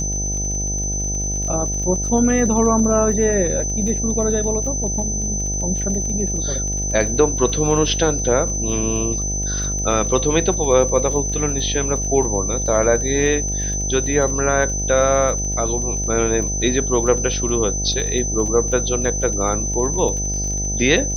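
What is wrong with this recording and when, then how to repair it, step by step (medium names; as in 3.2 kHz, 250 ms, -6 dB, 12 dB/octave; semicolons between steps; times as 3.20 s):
buzz 50 Hz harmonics 16 -25 dBFS
crackle 30 per s -27 dBFS
whine 6.1 kHz -23 dBFS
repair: de-click; de-hum 50 Hz, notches 16; band-stop 6.1 kHz, Q 30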